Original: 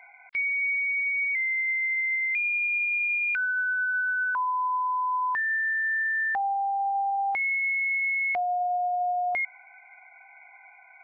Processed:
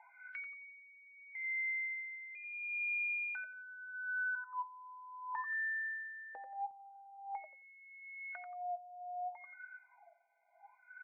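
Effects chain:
repeating echo 89 ms, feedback 25%, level −7.5 dB
LFO wah 0.75 Hz 480–1,500 Hz, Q 18
comb filter 3.3 ms, depth 79%
downward compressor 16 to 1, threshold −44 dBFS, peak gain reduction 19 dB
high-shelf EQ 2,500 Hz +8.5 dB, from 0:06.71 −5 dB, from 0:08.77 −10 dB
level +6 dB

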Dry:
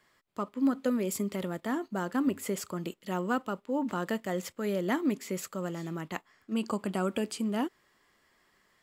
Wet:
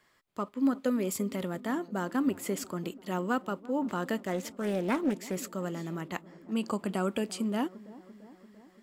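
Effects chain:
delay with a low-pass on its return 342 ms, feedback 66%, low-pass 980 Hz, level −19 dB
0:04.18–0:05.36: highs frequency-modulated by the lows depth 0.44 ms

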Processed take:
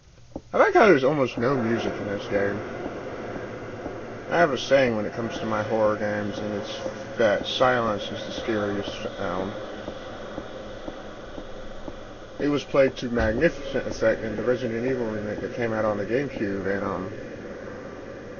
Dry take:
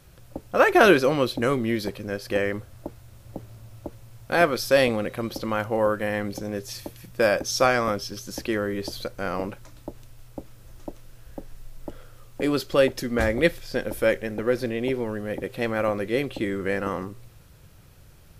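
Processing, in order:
hearing-aid frequency compression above 1,300 Hz 1.5 to 1
feedback delay with all-pass diffusion 960 ms, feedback 76%, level −13.5 dB

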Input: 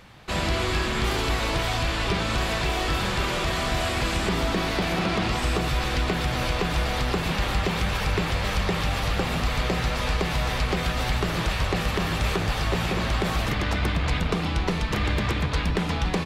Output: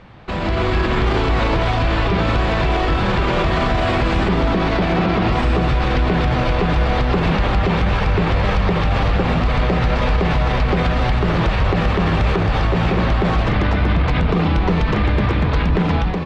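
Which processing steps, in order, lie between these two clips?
low-pass filter 4,500 Hz 12 dB per octave
high-shelf EQ 2,000 Hz −11 dB
hum removal 72.86 Hz, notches 27
brickwall limiter −24 dBFS, peak gain reduction 9.5 dB
automatic gain control gain up to 7 dB
level +8 dB

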